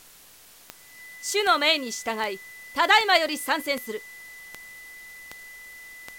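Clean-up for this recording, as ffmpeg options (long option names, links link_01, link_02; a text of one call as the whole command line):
ffmpeg -i in.wav -af "adeclick=threshold=4,bandreject=frequency=2000:width=30,afwtdn=0.0032" out.wav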